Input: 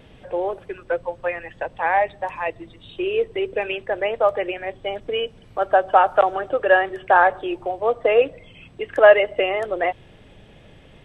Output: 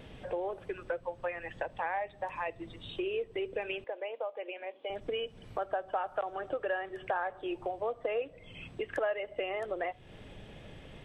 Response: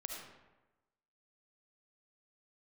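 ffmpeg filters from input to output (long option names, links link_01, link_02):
-filter_complex "[0:a]acompressor=threshold=-32dB:ratio=4,asettb=1/sr,asplit=3[link_01][link_02][link_03];[link_01]atrim=end=3.844[link_04];[link_02]atrim=start=3.84:end=4.9,asetpts=PTS-STARTPTS,afade=type=in:duration=0.004:curve=qsin,afade=type=out:start_time=1.056:duration=0.004:curve=qsin,highpass=frequency=340:width=0.5412,highpass=frequency=340:width=1.3066,equalizer=frequency=380:width_type=q:width=4:gain=-6,equalizer=frequency=710:width_type=q:width=4:gain=-5,equalizer=frequency=1300:width_type=q:width=4:gain=-8,equalizer=frequency=1800:width_type=q:width=4:gain=-10,lowpass=frequency=3300:width=0.5412,lowpass=frequency=3300:width=1.3066[link_05];[link_03]atrim=start=4.896[link_06];[link_04][link_05]acrossfade=duration=0.004:curve1=hsin:curve2=qsin[link_07];[link_07][link_06]acrossfade=duration=0.004:curve1=qsin:curve2=hsin,asplit=2[link_08][link_09];[1:a]atrim=start_sample=2205,atrim=end_sample=3528[link_10];[link_09][link_10]afir=irnorm=-1:irlink=0,volume=-15.5dB[link_11];[link_08][link_11]amix=inputs=2:normalize=0,volume=-2.5dB"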